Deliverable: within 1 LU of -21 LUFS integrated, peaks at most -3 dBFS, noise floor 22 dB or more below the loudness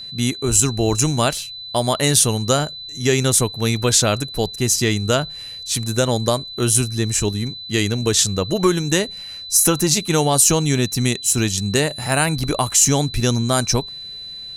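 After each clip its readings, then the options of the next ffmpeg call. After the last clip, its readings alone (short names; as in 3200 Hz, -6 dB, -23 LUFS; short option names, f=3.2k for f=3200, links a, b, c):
steady tone 4000 Hz; tone level -31 dBFS; loudness -18.0 LUFS; peak -1.5 dBFS; loudness target -21.0 LUFS
-> -af "bandreject=f=4k:w=30"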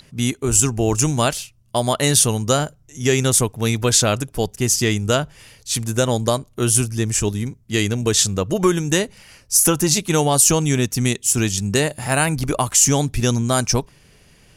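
steady tone none; loudness -18.0 LUFS; peak -1.5 dBFS; loudness target -21.0 LUFS
-> -af "volume=-3dB"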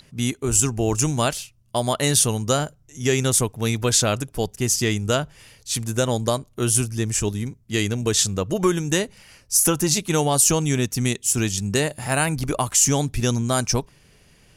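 loudness -21.0 LUFS; peak -4.5 dBFS; noise floor -56 dBFS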